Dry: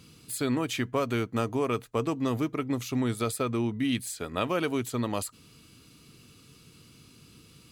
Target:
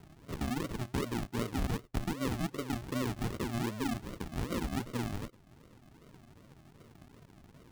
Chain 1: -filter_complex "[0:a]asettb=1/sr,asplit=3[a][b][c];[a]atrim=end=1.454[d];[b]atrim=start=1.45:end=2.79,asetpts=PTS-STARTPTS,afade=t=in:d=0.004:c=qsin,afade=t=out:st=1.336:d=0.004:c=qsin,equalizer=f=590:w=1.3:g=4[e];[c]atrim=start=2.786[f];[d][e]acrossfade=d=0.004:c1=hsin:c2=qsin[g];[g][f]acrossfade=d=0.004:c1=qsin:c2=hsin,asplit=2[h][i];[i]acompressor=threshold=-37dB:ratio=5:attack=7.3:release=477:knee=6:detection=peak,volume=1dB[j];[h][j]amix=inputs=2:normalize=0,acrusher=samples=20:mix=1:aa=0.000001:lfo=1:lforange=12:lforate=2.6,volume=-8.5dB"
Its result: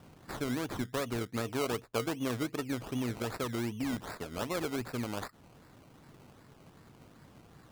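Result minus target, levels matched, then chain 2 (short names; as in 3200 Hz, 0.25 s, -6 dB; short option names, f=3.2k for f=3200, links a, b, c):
decimation with a swept rate: distortion -20 dB
-filter_complex "[0:a]asettb=1/sr,asplit=3[a][b][c];[a]atrim=end=1.454[d];[b]atrim=start=1.45:end=2.79,asetpts=PTS-STARTPTS,afade=t=in:d=0.004:c=qsin,afade=t=out:st=1.336:d=0.004:c=qsin,equalizer=f=590:w=1.3:g=4[e];[c]atrim=start=2.786[f];[d][e]acrossfade=d=0.004:c1=hsin:c2=qsin[g];[g][f]acrossfade=d=0.004:c1=qsin:c2=hsin,asplit=2[h][i];[i]acompressor=threshold=-37dB:ratio=5:attack=7.3:release=477:knee=6:detection=peak,volume=1dB[j];[h][j]amix=inputs=2:normalize=0,acrusher=samples=73:mix=1:aa=0.000001:lfo=1:lforange=43.8:lforate=2.6,volume=-8.5dB"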